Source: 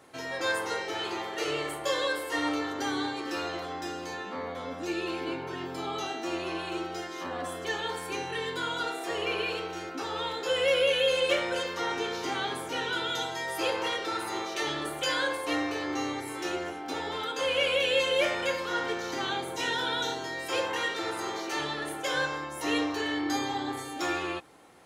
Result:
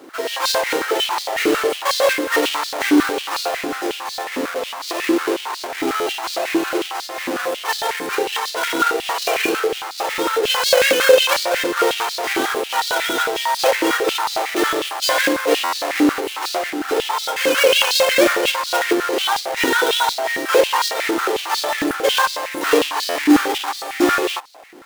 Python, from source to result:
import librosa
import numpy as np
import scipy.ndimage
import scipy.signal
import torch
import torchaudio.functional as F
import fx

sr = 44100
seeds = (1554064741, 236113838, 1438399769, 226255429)

y = fx.halfwave_hold(x, sr)
y = fx.buffer_glitch(y, sr, at_s=(5.96, 15.63, 23.05), block=512, repeats=8)
y = fx.filter_held_highpass(y, sr, hz=11.0, low_hz=300.0, high_hz=4300.0)
y = F.gain(torch.from_numpy(y), 5.0).numpy()